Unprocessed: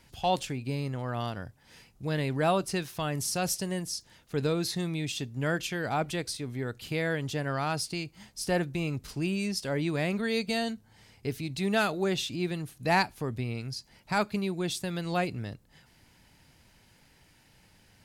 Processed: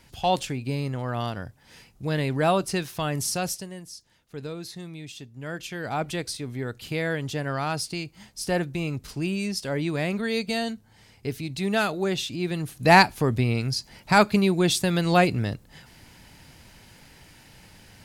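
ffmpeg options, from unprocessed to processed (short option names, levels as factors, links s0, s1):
-af "volume=11.2,afade=t=out:st=3.29:d=0.41:silence=0.281838,afade=t=in:st=5.43:d=0.7:silence=0.334965,afade=t=in:st=12.43:d=0.49:silence=0.421697"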